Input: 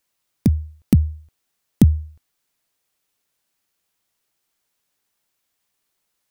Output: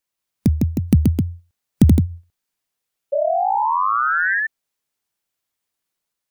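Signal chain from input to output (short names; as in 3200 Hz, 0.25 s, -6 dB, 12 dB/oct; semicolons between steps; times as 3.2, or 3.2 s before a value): spectral noise reduction 8 dB; painted sound rise, 3.12–4.47, 550–1800 Hz -21 dBFS; echoes that change speed 0.181 s, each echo +1 st, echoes 2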